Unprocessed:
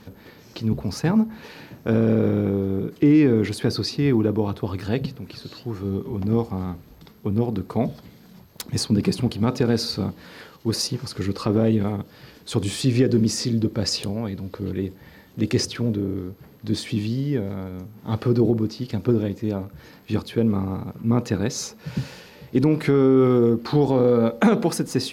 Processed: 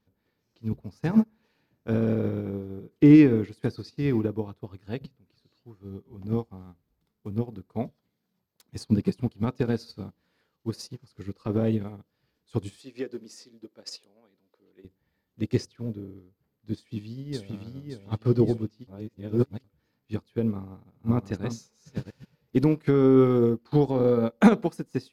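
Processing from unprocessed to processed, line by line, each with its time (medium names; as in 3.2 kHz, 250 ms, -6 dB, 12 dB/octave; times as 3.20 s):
0.58–4.26 s: feedback delay 75 ms, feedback 49%, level -18 dB
6.63–7.31 s: dead-time distortion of 0.06 ms
7.91–8.76 s: high-pass 170 Hz 6 dB/octave
12.79–14.85 s: high-pass 370 Hz
16.75–17.52 s: echo throw 570 ms, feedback 45%, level -2 dB
18.87–19.64 s: reverse
20.52–22.74 s: chunks repeated in reverse 397 ms, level -5 dB
whole clip: bass shelf 63 Hz +6.5 dB; upward expansion 2.5:1, over -33 dBFS; trim +2 dB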